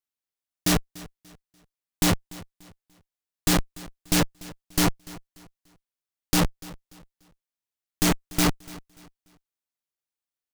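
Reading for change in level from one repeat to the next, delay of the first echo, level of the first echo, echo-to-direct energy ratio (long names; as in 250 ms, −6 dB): −10.0 dB, 292 ms, −20.0 dB, −19.5 dB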